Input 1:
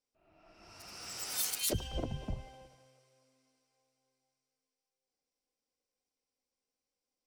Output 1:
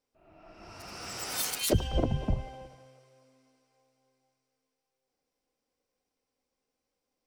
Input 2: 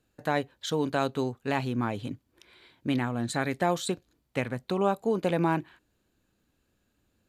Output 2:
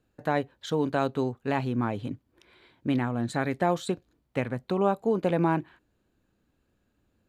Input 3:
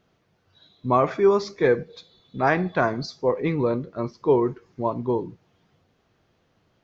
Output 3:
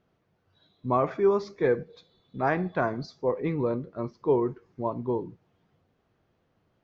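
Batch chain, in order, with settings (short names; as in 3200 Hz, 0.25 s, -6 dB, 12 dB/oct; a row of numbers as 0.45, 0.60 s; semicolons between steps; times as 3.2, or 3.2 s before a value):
high shelf 2700 Hz -9 dB; normalise peaks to -12 dBFS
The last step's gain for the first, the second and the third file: +9.5, +1.5, -4.0 dB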